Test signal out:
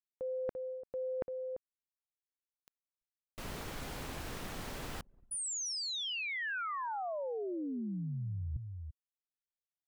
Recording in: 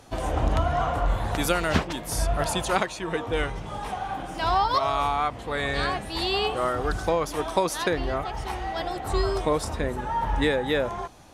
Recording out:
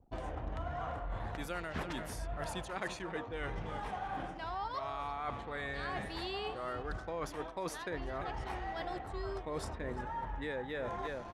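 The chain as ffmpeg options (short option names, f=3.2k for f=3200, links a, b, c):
-af "highshelf=f=3.8k:g=-6.5,aecho=1:1:342:0.158,adynamicequalizer=threshold=0.00562:dfrequency=1800:dqfactor=2.5:tfrequency=1800:tqfactor=2.5:attack=5:release=100:ratio=0.375:range=2:mode=boostabove:tftype=bell,areverse,acompressor=threshold=-36dB:ratio=12,areverse,anlmdn=0.00251"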